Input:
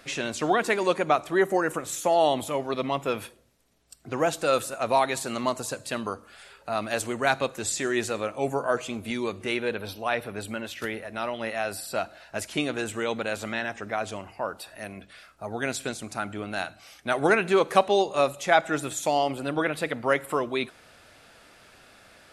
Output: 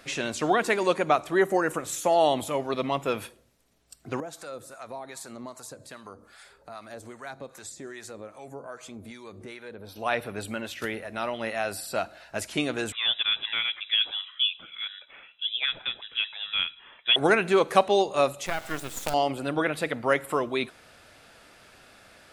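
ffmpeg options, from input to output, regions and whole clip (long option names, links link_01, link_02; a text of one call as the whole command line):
ffmpeg -i in.wav -filter_complex "[0:a]asettb=1/sr,asplit=3[link_01][link_02][link_03];[link_01]atrim=end=4.204[link_04];[link_02]atrim=start=4.2:end=9.96,asetpts=PTS-STARTPTS,afade=type=in:duration=0.004:curve=qsin,afade=type=out:start_time=5.756:duration=0.004:curve=qsin,equalizer=frequency=2800:width=3.9:gain=-9,acompressor=threshold=-41dB:ratio=2:attack=3.2:release=140:knee=1:detection=peak,acrossover=split=760[link_05][link_06];[link_05]aeval=exprs='val(0)*(1-0.7/2+0.7/2*cos(2*PI*2.5*n/s))':channel_layout=same[link_07];[link_06]aeval=exprs='val(0)*(1-0.7/2-0.7/2*cos(2*PI*2.5*n/s))':channel_layout=same[link_08];[link_07][link_08]amix=inputs=2:normalize=0[link_09];[link_03]atrim=start=9.956[link_10];[link_04][link_09]acrossfade=duration=0.004:curve1=hsin:curve2=qsin[link_11];[link_11][link_10]acrossfade=duration=0.004:curve1=qsin:curve2=hsin,asettb=1/sr,asplit=3[link_12][link_13][link_14];[link_12]atrim=end=12.924[link_15];[link_13]atrim=start=12.92:end=17.16,asetpts=PTS-STARTPTS,afade=type=in:duration=0.004:curve=qsin,afade=type=out:start_time=4.236:duration=0.004:curve=qsin,lowshelf=frequency=410:width_type=q:width=3:gain=-11.5,lowpass=frequency=3400:width_type=q:width=0.5098,lowpass=frequency=3400:width_type=q:width=0.6013,lowpass=frequency=3400:width_type=q:width=0.9,lowpass=frequency=3400:width_type=q:width=2.563,afreqshift=-4000[link_16];[link_14]atrim=start=17.156[link_17];[link_15][link_16]acrossfade=duration=0.004:curve1=hsin:curve2=qsin[link_18];[link_18][link_17]acrossfade=duration=0.004:curve1=qsin:curve2=hsin,asettb=1/sr,asplit=3[link_19][link_20][link_21];[link_19]atrim=end=18.464[link_22];[link_20]atrim=start=18.46:end=19.14,asetpts=PTS-STARTPTS,afade=type=in:duration=0.004:curve=qsin,afade=type=out:start_time=0.676:duration=0.004:curve=qsin,lowshelf=frequency=240:gain=-6,acompressor=threshold=-21dB:ratio=20:attack=3.2:release=140:knee=1:detection=peak,acrusher=bits=4:dc=4:mix=0:aa=0.000001[link_23];[link_21]atrim=start=19.136[link_24];[link_22][link_23]acrossfade=duration=0.004:curve1=hsin:curve2=qsin[link_25];[link_25][link_24]acrossfade=duration=0.004:curve1=qsin:curve2=hsin" out.wav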